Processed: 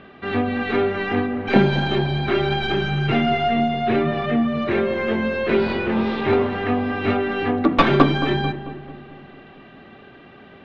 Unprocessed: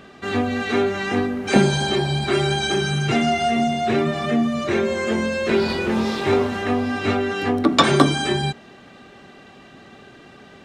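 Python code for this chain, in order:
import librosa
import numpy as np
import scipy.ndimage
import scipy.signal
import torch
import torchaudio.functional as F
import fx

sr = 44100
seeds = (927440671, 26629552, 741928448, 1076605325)

y = fx.tracing_dist(x, sr, depth_ms=0.21)
y = scipy.signal.sosfilt(scipy.signal.butter(4, 3400.0, 'lowpass', fs=sr, output='sos'), y)
y = fx.echo_filtered(y, sr, ms=221, feedback_pct=58, hz=1300.0, wet_db=-11.5)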